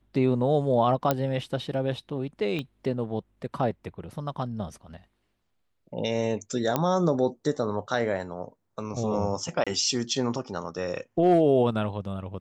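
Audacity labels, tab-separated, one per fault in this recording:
1.110000	1.110000	click −9 dBFS
2.590000	2.590000	click −20 dBFS
6.760000	6.760000	click −10 dBFS
9.640000	9.670000	drop-out 26 ms

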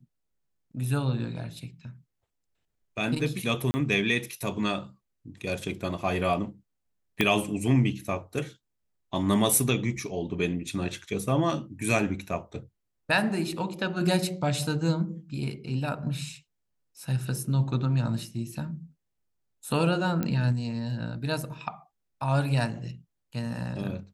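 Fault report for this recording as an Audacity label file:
3.710000	3.740000	drop-out 30 ms
7.210000	7.210000	click −9 dBFS
20.230000	20.230000	click −16 dBFS

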